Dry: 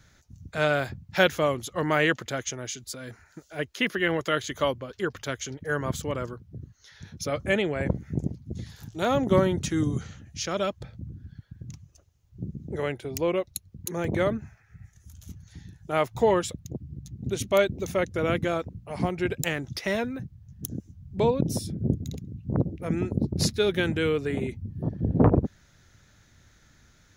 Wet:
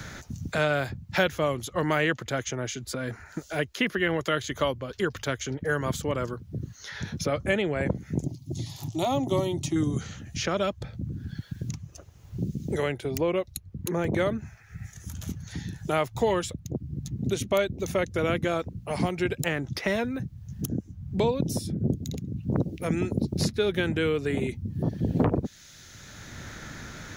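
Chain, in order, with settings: 8.24–9.76 fixed phaser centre 310 Hz, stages 8; three-band squash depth 70%

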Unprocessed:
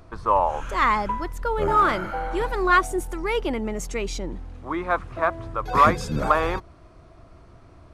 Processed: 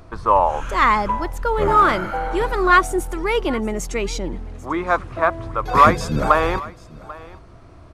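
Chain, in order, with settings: echo 0.791 s -20.5 dB; gain +4.5 dB

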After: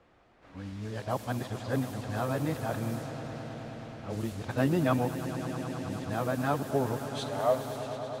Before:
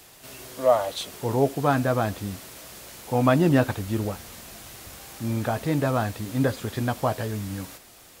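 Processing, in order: whole clip reversed; swelling echo 0.106 s, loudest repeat 5, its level -15 dB; low-pass opened by the level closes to 1500 Hz, open at -21 dBFS; gain -7.5 dB

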